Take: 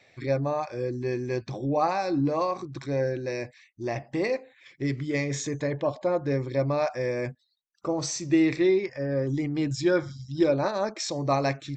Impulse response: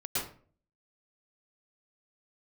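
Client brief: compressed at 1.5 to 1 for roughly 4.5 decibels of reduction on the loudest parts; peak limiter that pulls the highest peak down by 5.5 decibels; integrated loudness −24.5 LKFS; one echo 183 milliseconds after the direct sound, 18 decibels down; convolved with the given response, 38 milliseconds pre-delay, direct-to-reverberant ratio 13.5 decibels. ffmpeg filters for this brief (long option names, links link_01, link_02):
-filter_complex "[0:a]acompressor=threshold=-30dB:ratio=1.5,alimiter=limit=-22dB:level=0:latency=1,aecho=1:1:183:0.126,asplit=2[link_01][link_02];[1:a]atrim=start_sample=2205,adelay=38[link_03];[link_02][link_03]afir=irnorm=-1:irlink=0,volume=-19dB[link_04];[link_01][link_04]amix=inputs=2:normalize=0,volume=7dB"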